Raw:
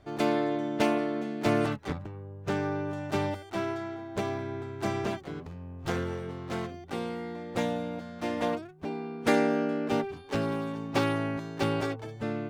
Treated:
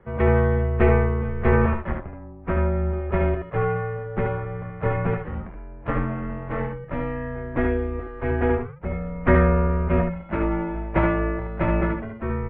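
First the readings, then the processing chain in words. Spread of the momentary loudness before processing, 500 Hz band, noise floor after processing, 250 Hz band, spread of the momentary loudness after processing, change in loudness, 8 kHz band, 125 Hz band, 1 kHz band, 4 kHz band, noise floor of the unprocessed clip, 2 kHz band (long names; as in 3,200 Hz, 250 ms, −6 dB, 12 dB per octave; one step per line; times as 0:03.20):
10 LU, +6.5 dB, −39 dBFS, +4.5 dB, 12 LU, +7.0 dB, below −30 dB, +13.0 dB, +5.0 dB, below −10 dB, −45 dBFS, +6.5 dB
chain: ambience of single reflections 24 ms −7.5 dB, 74 ms −5 dB
single-sideband voice off tune −220 Hz 180–2,400 Hz
level +7 dB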